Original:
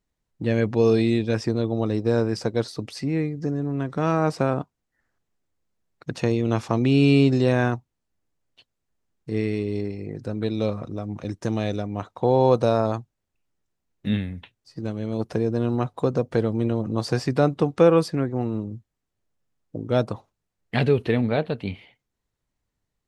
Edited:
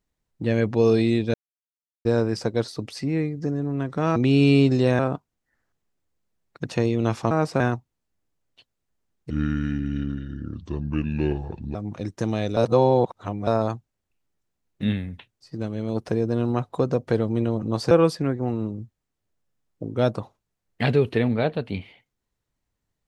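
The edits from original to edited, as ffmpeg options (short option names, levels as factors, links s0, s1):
-filter_complex "[0:a]asplit=12[s0][s1][s2][s3][s4][s5][s6][s7][s8][s9][s10][s11];[s0]atrim=end=1.34,asetpts=PTS-STARTPTS,afade=t=out:st=1.336:d=0.004:c=hsin[s12];[s1]atrim=start=1.34:end=2.05,asetpts=PTS-STARTPTS,volume=0[s13];[s2]atrim=start=2.05:end=4.162,asetpts=PTS-STARTPTS,afade=t=in:d=0.004:c=hsin[s14];[s3]atrim=start=6.768:end=7.602[s15];[s4]atrim=start=4.448:end=6.772[s16];[s5]atrim=start=4.158:end=4.452[s17];[s6]atrim=start=7.598:end=9.304[s18];[s7]atrim=start=9.3:end=10.99,asetpts=PTS-STARTPTS,asetrate=30429,aresample=44100,atrim=end_sample=108013,asetpts=PTS-STARTPTS[s19];[s8]atrim=start=10.986:end=11.812[s20];[s9]atrim=start=11.808:end=12.712,asetpts=PTS-STARTPTS,areverse[s21];[s10]atrim=start=12.708:end=17.152[s22];[s11]atrim=start=17.838[s23];[s12][s13][s14]concat=n=3:v=0:a=1[s24];[s24][s15]acrossfade=d=0.004:c1=hsin:c2=hsin[s25];[s25][s16]acrossfade=d=0.004:c1=hsin:c2=hsin[s26];[s26][s17]acrossfade=d=0.004:c1=hsin:c2=hsin[s27];[s27][s18]acrossfade=d=0.004:c1=hsin:c2=hsin[s28];[s28][s19]acrossfade=d=0.004:c1=hsin:c2=hsin[s29];[s29][s20]acrossfade=d=0.004:c1=hsin:c2=hsin[s30];[s30][s21]acrossfade=d=0.004:c1=hsin:c2=hsin[s31];[s31][s22]acrossfade=d=0.004:c1=hsin:c2=hsin[s32];[s32][s23]acrossfade=d=0.004:c1=hsin:c2=hsin"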